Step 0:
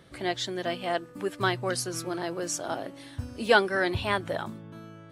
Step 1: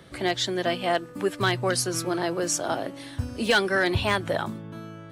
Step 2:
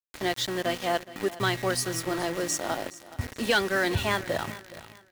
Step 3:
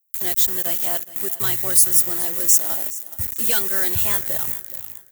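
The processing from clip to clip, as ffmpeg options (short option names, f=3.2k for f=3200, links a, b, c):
-filter_complex "[0:a]acrossover=split=180|1700[a][b][c];[b]alimiter=limit=-21dB:level=0:latency=1:release=133[d];[a][d][c]amix=inputs=3:normalize=0,volume=18.5dB,asoftclip=hard,volume=-18.5dB,volume=5.5dB"
-af "aeval=exprs='val(0)+0.00891*sin(2*PI*1900*n/s)':c=same,aeval=exprs='val(0)*gte(abs(val(0)),0.0316)':c=same,aecho=1:1:420|840|1260:0.133|0.04|0.012,volume=-2.5dB"
-filter_complex "[0:a]aemphasis=mode=production:type=75fm,acrossover=split=110[a][b];[a]acontrast=77[c];[c][b]amix=inputs=2:normalize=0,aexciter=amount=3.5:drive=5.5:freq=6.6k,volume=-5.5dB"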